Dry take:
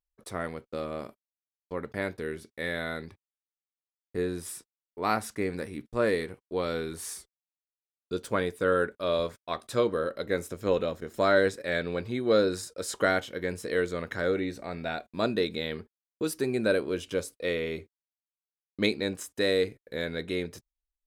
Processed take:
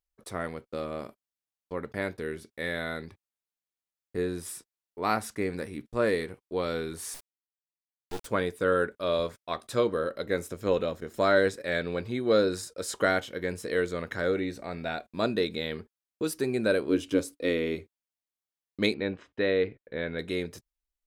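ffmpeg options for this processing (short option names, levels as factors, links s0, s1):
-filter_complex "[0:a]asettb=1/sr,asplit=3[s0][s1][s2];[s0]atrim=end=7.144[s3];[s1]atrim=start=7.14:end=8.26,asetpts=PTS-STARTPTS,afade=t=in:d=0.004:c=qsin,afade=t=out:st=1.116:d=0.004:c=qsin,acrusher=bits=4:dc=4:mix=0:aa=0.000001[s4];[s2]atrim=start=8.256[s5];[s3][s4]acrossfade=d=0.004:c1=hsin:c2=qsin[s6];[s6][s5]acrossfade=d=0.004:c1=qsin:c2=hsin,asettb=1/sr,asplit=3[s7][s8][s9];[s7]atrim=end=16.894[s10];[s8]atrim=start=16.89:end=17.75,asetpts=PTS-STARTPTS,afade=t=in:d=0.004:c=qsin,afade=t=out:st=0.856:d=0.004:c=qsin,equalizer=f=290:w=3.6:g=14.5[s11];[s9]atrim=start=17.746[s12];[s10][s11]acrossfade=d=0.004:c1=hsin:c2=qsin[s13];[s13][s12]acrossfade=d=0.004:c1=qsin:c2=hsin,asettb=1/sr,asplit=3[s14][s15][s16];[s14]atrim=end=18.944[s17];[s15]atrim=start=18.94:end=20.19,asetpts=PTS-STARTPTS,afade=t=in:d=0.004:c=qsin,afade=t=out:st=1.246:d=0.004:c=qsin,lowpass=f=3200:w=0.5412,lowpass=f=3200:w=1.3066[s18];[s16]atrim=start=20.186[s19];[s17][s18]acrossfade=d=0.004:c1=hsin:c2=qsin[s20];[s20][s19]acrossfade=d=0.004:c1=qsin:c2=hsin"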